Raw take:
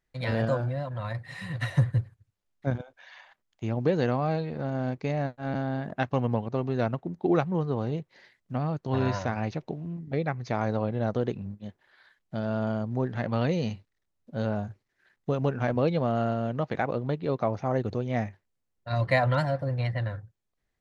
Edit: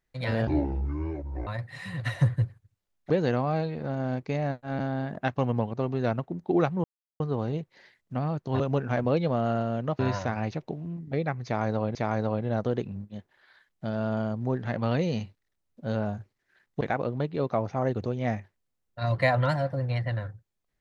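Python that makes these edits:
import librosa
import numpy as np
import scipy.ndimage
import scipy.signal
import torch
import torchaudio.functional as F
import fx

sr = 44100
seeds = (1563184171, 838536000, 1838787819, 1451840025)

y = fx.edit(x, sr, fx.speed_span(start_s=0.47, length_s=0.56, speed=0.56),
    fx.cut(start_s=2.66, length_s=1.19),
    fx.insert_silence(at_s=7.59, length_s=0.36),
    fx.repeat(start_s=10.45, length_s=0.5, count=2),
    fx.move(start_s=15.31, length_s=1.39, to_s=8.99), tone=tone)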